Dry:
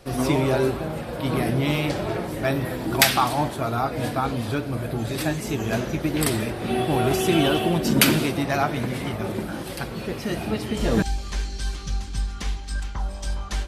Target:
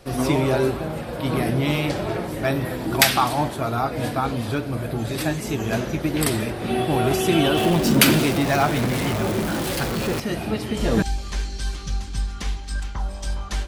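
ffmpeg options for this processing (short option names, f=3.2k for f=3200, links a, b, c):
-filter_complex "[0:a]asettb=1/sr,asplit=3[a][b][c];[a]atrim=end=7.574[d];[b]atrim=start=7.57:end=10.2,asetpts=PTS-STARTPTS,afade=t=in:d=0.004:c=qsin,afade=t=out:st=2.626:d=0.004:c=qsin,aeval=exprs='val(0)+0.5*0.0596*sgn(val(0))':c=same[e];[c]atrim=start=10.196[f];[d][e]acrossfade=d=0.004:c1=hsin:c2=qsin[g];[g][f]acrossfade=d=0.004:c1=qsin:c2=hsin,volume=1dB"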